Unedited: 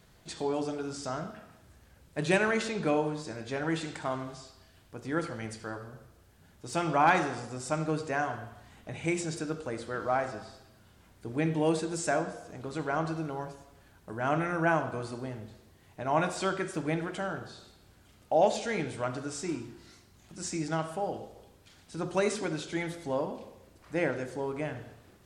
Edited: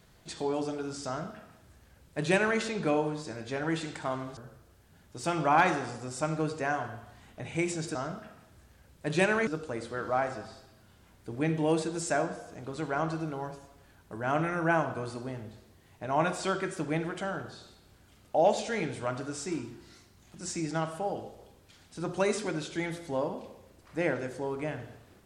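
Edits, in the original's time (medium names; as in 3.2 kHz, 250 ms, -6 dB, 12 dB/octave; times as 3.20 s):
1.07–2.59 s: copy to 9.44 s
4.37–5.86 s: delete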